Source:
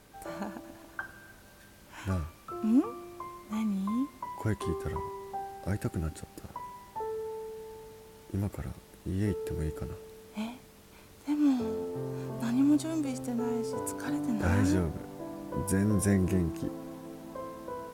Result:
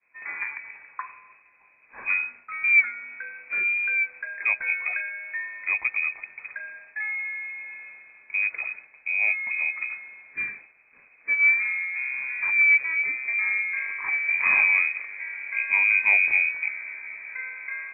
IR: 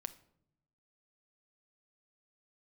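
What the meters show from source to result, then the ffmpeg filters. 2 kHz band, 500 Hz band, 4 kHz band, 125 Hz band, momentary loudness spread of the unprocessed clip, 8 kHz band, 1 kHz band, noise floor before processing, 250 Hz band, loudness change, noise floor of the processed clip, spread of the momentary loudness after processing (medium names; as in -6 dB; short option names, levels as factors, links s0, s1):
+25.0 dB, under -15 dB, under -30 dB, under -30 dB, 17 LU, under -35 dB, -1.0 dB, -55 dBFS, under -30 dB, +10.0 dB, -57 dBFS, 19 LU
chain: -af "equalizer=f=1300:t=o:w=0.77:g=-2.5,agate=range=0.0224:threshold=0.00447:ratio=3:detection=peak,lowpass=f=2200:t=q:w=0.5098,lowpass=f=2200:t=q:w=0.6013,lowpass=f=2200:t=q:w=0.9,lowpass=f=2200:t=q:w=2.563,afreqshift=-2600,volume=2"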